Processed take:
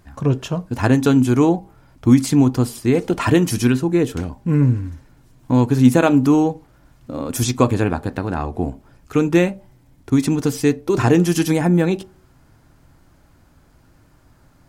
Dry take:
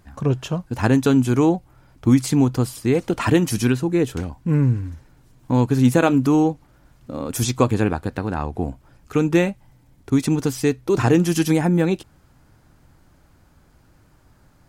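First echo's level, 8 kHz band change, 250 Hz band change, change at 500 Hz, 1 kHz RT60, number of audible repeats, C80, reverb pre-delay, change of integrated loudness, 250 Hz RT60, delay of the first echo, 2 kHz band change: no echo audible, +1.5 dB, +2.5 dB, +1.5 dB, 0.45 s, no echo audible, 27.5 dB, 3 ms, +2.0 dB, 0.40 s, no echo audible, +1.5 dB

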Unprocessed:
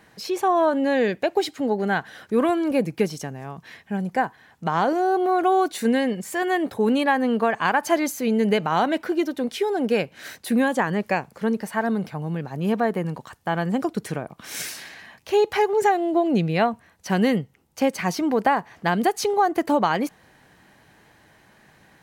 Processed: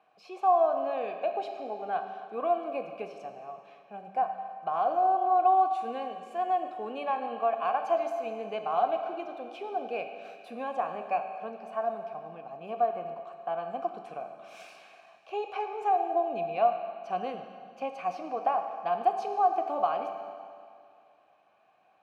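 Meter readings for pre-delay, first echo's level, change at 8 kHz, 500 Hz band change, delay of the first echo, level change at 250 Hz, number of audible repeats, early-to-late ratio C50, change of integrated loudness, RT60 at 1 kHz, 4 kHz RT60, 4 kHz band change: 10 ms, no echo audible, below −25 dB, −8.0 dB, no echo audible, −21.5 dB, no echo audible, 6.5 dB, −7.5 dB, 2.2 s, 2.0 s, −16.5 dB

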